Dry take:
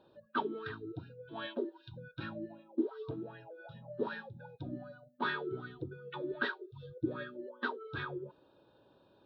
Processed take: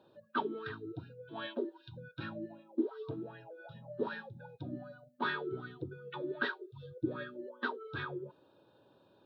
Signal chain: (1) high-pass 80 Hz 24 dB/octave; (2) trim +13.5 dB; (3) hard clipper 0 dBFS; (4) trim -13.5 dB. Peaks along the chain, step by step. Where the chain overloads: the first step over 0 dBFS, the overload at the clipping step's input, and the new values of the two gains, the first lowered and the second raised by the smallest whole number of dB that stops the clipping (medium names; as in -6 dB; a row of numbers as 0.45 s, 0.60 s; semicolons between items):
-19.5 dBFS, -6.0 dBFS, -6.0 dBFS, -19.5 dBFS; nothing clips